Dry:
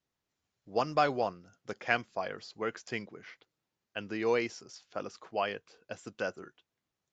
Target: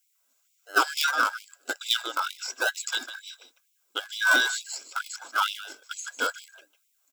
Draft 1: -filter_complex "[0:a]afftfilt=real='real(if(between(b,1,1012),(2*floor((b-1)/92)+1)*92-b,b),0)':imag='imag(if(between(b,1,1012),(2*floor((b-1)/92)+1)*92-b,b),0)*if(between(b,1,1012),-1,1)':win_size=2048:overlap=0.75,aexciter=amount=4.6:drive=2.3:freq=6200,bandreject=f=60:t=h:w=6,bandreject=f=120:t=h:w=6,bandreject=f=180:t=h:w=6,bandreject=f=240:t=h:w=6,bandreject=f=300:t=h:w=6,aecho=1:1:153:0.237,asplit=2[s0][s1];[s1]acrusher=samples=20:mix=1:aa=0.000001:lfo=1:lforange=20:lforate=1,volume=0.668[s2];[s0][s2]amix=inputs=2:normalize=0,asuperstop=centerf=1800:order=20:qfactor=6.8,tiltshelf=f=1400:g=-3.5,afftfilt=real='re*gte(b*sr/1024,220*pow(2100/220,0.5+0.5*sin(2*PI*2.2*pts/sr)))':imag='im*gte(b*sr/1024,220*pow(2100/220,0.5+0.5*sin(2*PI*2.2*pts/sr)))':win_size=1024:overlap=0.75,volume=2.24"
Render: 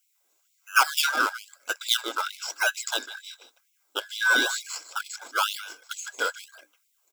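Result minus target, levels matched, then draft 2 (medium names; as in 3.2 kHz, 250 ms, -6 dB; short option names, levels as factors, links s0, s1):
decimation with a swept rate: distortion -9 dB
-filter_complex "[0:a]afftfilt=real='real(if(between(b,1,1012),(2*floor((b-1)/92)+1)*92-b,b),0)':imag='imag(if(between(b,1,1012),(2*floor((b-1)/92)+1)*92-b,b),0)*if(between(b,1,1012),-1,1)':win_size=2048:overlap=0.75,aexciter=amount=4.6:drive=2.3:freq=6200,bandreject=f=60:t=h:w=6,bandreject=f=120:t=h:w=6,bandreject=f=180:t=h:w=6,bandreject=f=240:t=h:w=6,bandreject=f=300:t=h:w=6,aecho=1:1:153:0.237,asplit=2[s0][s1];[s1]acrusher=samples=74:mix=1:aa=0.000001:lfo=1:lforange=74:lforate=1,volume=0.668[s2];[s0][s2]amix=inputs=2:normalize=0,asuperstop=centerf=1800:order=20:qfactor=6.8,tiltshelf=f=1400:g=-3.5,afftfilt=real='re*gte(b*sr/1024,220*pow(2100/220,0.5+0.5*sin(2*PI*2.2*pts/sr)))':imag='im*gte(b*sr/1024,220*pow(2100/220,0.5+0.5*sin(2*PI*2.2*pts/sr)))':win_size=1024:overlap=0.75,volume=2.24"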